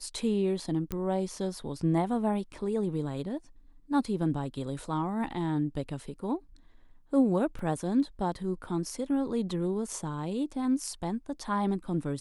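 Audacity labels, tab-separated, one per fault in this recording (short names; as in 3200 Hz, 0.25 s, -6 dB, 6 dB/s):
0.920000	0.920000	pop -19 dBFS
7.590000	7.590000	gap 2.4 ms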